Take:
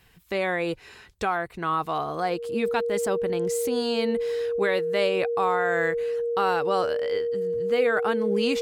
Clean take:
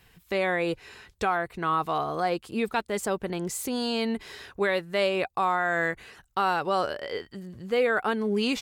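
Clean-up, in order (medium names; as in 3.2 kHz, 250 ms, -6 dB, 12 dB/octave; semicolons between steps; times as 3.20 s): band-stop 470 Hz, Q 30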